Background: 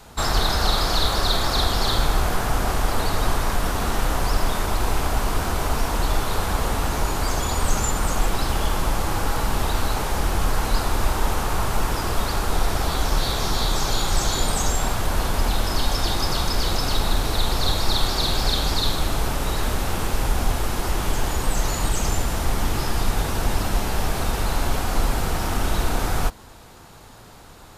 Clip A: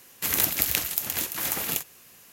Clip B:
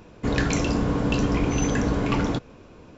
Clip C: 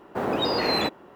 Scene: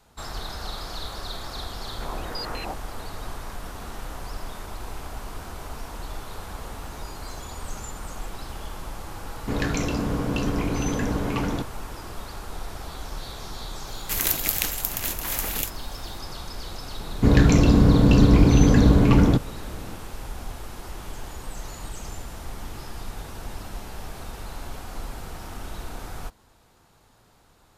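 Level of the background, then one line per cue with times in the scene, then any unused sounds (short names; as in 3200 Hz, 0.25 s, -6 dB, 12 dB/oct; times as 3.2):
background -13.5 dB
1.85 add C -13.5 dB + stepped low-pass 10 Hz 820–4900 Hz
6.57 add C -17.5 dB + inverse Chebyshev high-pass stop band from 2400 Hz
9.24 add B -3 dB
13.87 add A -0.5 dB
16.99 add B + low shelf 330 Hz +11 dB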